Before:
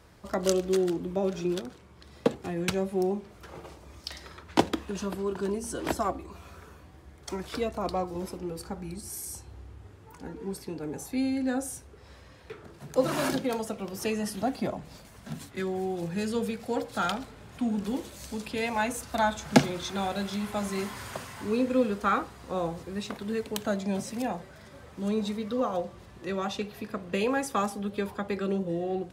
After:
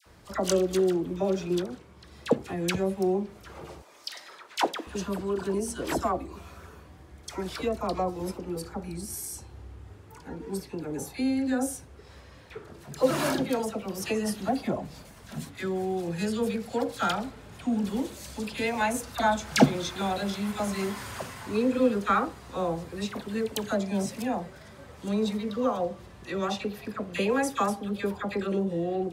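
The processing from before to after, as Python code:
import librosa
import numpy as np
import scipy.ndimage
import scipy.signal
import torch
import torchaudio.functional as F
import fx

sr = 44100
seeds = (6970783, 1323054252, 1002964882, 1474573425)

y = fx.highpass(x, sr, hz=540.0, slope=12, at=(3.76, 4.81))
y = fx.dispersion(y, sr, late='lows', ms=62.0, hz=1200.0)
y = F.gain(torch.from_numpy(y), 1.5).numpy()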